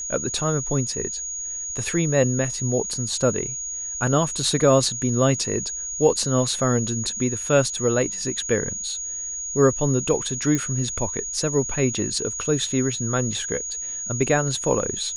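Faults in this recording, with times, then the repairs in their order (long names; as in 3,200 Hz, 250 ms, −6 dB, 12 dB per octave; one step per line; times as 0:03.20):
whistle 6,700 Hz −28 dBFS
0:10.55: click −11 dBFS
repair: click removal
notch filter 6,700 Hz, Q 30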